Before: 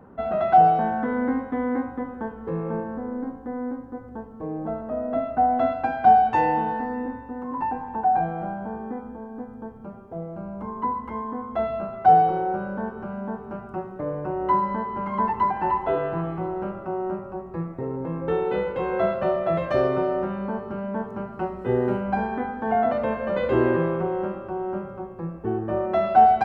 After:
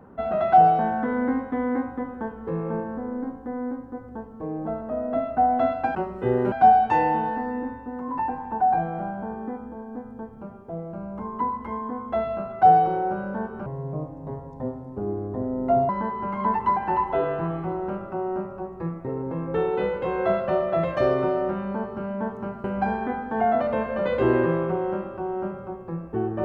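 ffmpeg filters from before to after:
-filter_complex "[0:a]asplit=6[a][b][c][d][e][f];[a]atrim=end=5.952[g];[b]atrim=start=21.378:end=21.952[h];[c]atrim=start=5.948:end=13.094[i];[d]atrim=start=13.09:end=14.63,asetpts=PTS-STARTPTS,asetrate=30429,aresample=44100,atrim=end_sample=98426,asetpts=PTS-STARTPTS[j];[e]atrim=start=14.626:end=21.382[k];[f]atrim=start=21.948[l];[g][h]acrossfade=d=0.004:c1=hsin:c2=hsin[m];[m][i]acrossfade=d=0.004:c1=hsin:c2=hsin[n];[n][j]acrossfade=d=0.004:c1=hsin:c2=hsin[o];[o][k]acrossfade=d=0.004:c1=hsin:c2=hsin[p];[p][l]acrossfade=d=0.004:c1=hsin:c2=hsin"

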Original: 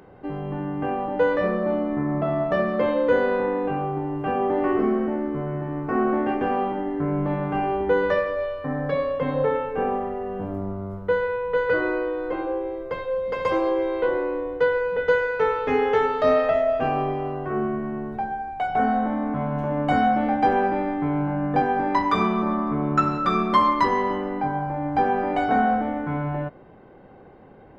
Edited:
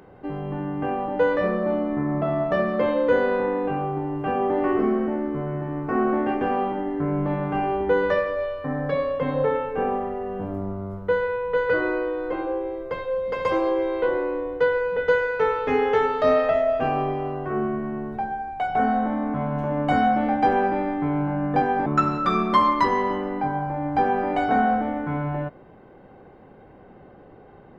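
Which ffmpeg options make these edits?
-filter_complex "[0:a]asplit=2[a][b];[a]atrim=end=21.862[c];[b]atrim=start=22.858[d];[c][d]acrossfade=d=0.004:c1=hsin:c2=hsin"

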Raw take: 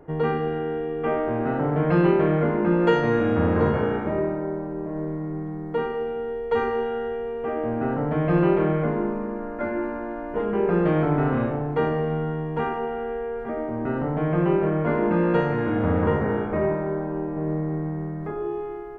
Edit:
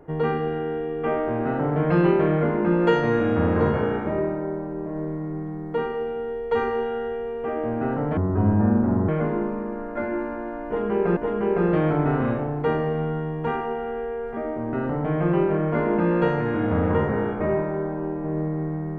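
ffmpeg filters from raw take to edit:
-filter_complex "[0:a]asplit=4[a][b][c][d];[a]atrim=end=8.174[e];[b]atrim=start=8.17:end=8.72,asetpts=PTS-STARTPTS,asetrate=26460,aresample=44100[f];[c]atrim=start=8.716:end=10.802[g];[d]atrim=start=10.288[h];[e][f]acrossfade=d=0.004:c1=hsin:c2=hsin[i];[i][g]acrossfade=d=0.004:c1=hsin:c2=hsin[j];[j][h]acrossfade=d=0.004:c1=hsin:c2=hsin"

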